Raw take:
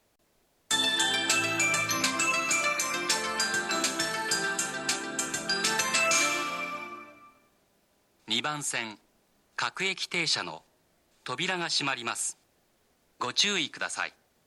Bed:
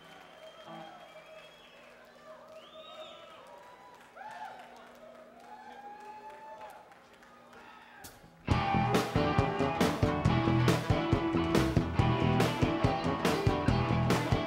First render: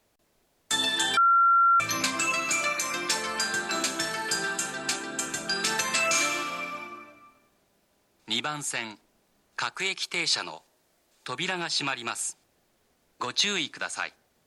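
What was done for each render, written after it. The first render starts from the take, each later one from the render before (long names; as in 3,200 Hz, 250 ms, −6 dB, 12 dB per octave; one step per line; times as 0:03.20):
0:01.17–0:01.80: beep over 1,370 Hz −16.5 dBFS
0:09.77–0:11.28: bass and treble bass −6 dB, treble +3 dB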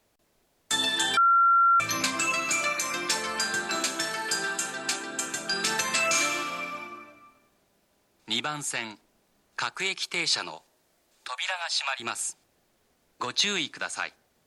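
0:03.75–0:05.53: low-shelf EQ 160 Hz −8 dB
0:11.28–0:12.00: Butterworth high-pass 550 Hz 96 dB per octave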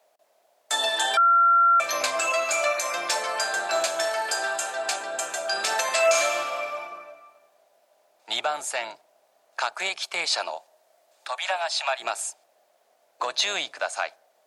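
sub-octave generator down 1 octave, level +2 dB
high-pass with resonance 640 Hz, resonance Q 4.9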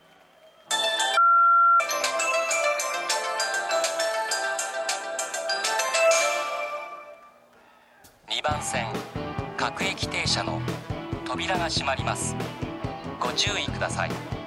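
mix in bed −3.5 dB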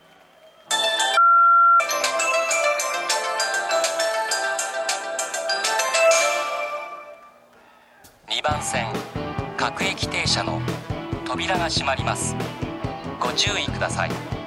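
level +3.5 dB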